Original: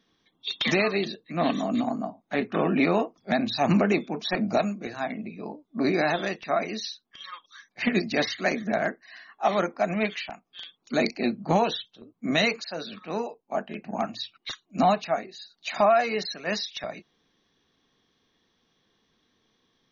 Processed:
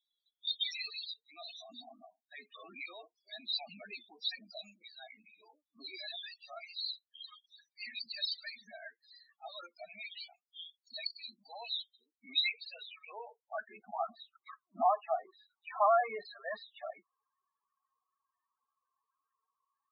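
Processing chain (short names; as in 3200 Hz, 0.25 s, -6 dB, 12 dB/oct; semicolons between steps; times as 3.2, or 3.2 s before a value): sample leveller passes 1; band-pass sweep 4600 Hz -> 1100 Hz, 12.04–13.99; loudest bins only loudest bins 8; gain -1 dB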